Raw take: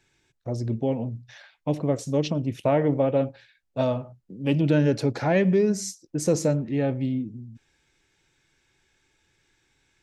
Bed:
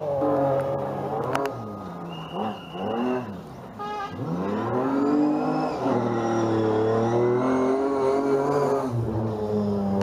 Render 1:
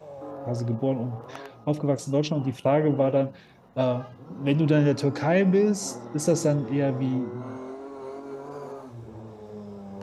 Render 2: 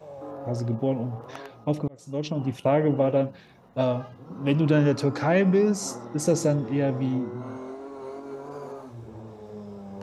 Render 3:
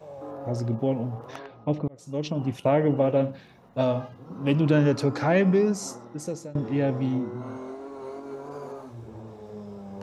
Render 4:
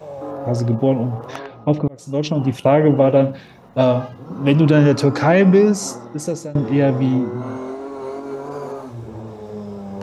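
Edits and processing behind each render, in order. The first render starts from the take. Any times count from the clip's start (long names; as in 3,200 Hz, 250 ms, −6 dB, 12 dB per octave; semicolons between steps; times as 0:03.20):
mix in bed −15.5 dB
0:01.88–0:02.48: fade in; 0:04.31–0:06.06: parametric band 1,200 Hz +6 dB 0.42 octaves
0:01.39–0:01.98: high-frequency loss of the air 170 metres; 0:03.13–0:04.08: flutter between parallel walls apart 11.4 metres, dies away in 0.27 s; 0:05.52–0:06.55: fade out, to −21.5 dB
level +9 dB; brickwall limiter −3 dBFS, peak gain reduction 3 dB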